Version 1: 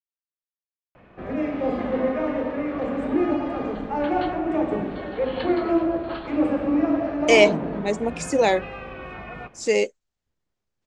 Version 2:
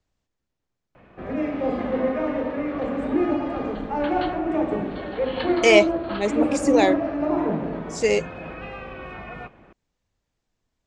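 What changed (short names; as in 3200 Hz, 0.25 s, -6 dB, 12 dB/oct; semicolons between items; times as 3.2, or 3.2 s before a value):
speech: entry -1.65 s; reverb: on, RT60 0.60 s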